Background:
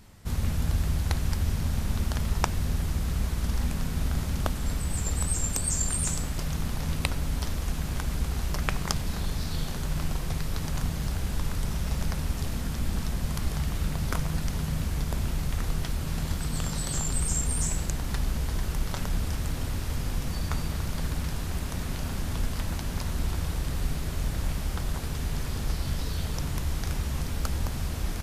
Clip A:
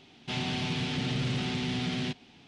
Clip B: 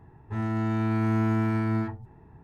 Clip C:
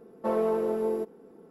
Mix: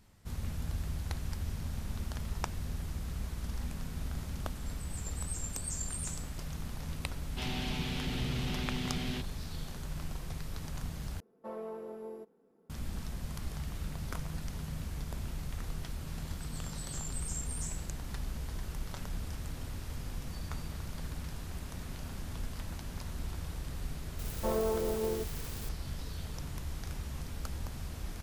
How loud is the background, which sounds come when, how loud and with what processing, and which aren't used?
background −10 dB
0:07.09: mix in A −5.5 dB
0:11.20: overwrite with C −14 dB + parametric band 340 Hz −4 dB 0.71 octaves
0:24.19: mix in C −5.5 dB + spike at every zero crossing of −25 dBFS
not used: B

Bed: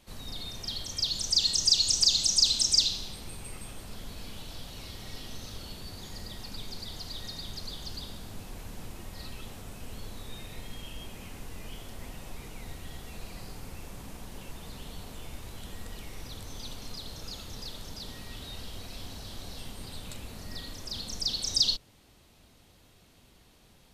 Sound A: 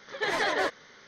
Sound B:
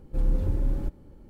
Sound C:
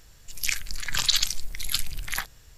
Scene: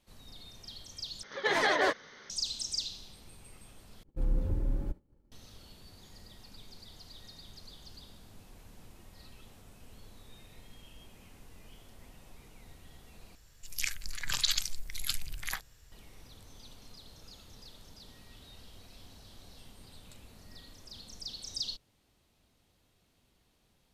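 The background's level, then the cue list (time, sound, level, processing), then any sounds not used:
bed −11.5 dB
0:01.23: overwrite with A
0:04.03: overwrite with B −5.5 dB + downward expander −40 dBFS
0:13.35: overwrite with C −7 dB

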